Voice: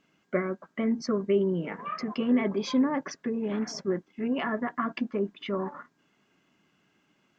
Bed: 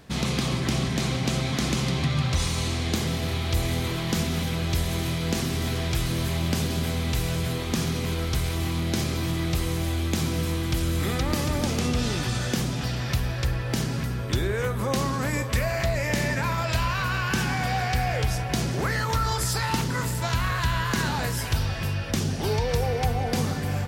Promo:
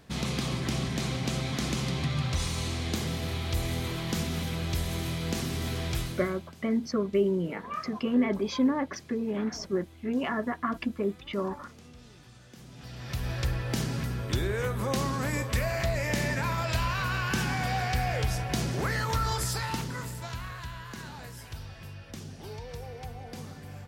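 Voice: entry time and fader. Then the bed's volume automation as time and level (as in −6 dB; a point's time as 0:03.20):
5.85 s, −0.5 dB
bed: 0:05.99 −5 dB
0:06.55 −26 dB
0:12.51 −26 dB
0:13.32 −3.5 dB
0:19.35 −3.5 dB
0:20.79 −16 dB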